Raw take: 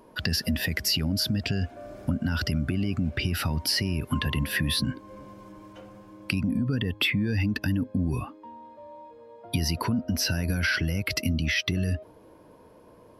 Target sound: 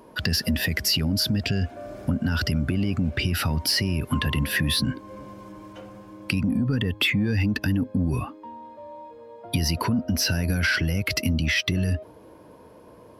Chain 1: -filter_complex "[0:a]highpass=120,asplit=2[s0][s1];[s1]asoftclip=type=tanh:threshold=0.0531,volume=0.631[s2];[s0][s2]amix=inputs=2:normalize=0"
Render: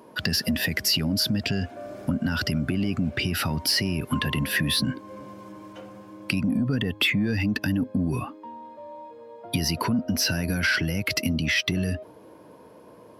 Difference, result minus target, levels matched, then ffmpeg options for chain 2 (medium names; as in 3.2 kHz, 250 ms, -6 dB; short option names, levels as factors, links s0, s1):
125 Hz band -2.5 dB
-filter_complex "[0:a]highpass=36,asplit=2[s0][s1];[s1]asoftclip=type=tanh:threshold=0.0531,volume=0.631[s2];[s0][s2]amix=inputs=2:normalize=0"